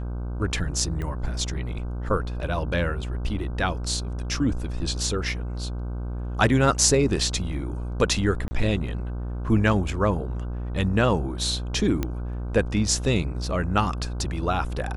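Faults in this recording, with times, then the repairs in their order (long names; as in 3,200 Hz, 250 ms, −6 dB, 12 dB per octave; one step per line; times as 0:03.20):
mains buzz 60 Hz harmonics 26 −30 dBFS
0:01.02: click −21 dBFS
0:08.48–0:08.51: drop-out 30 ms
0:12.03: click −12 dBFS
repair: click removal
hum removal 60 Hz, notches 26
repair the gap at 0:08.48, 30 ms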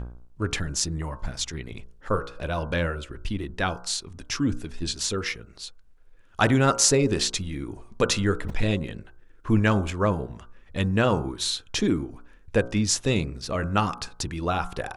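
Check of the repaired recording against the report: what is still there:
none of them is left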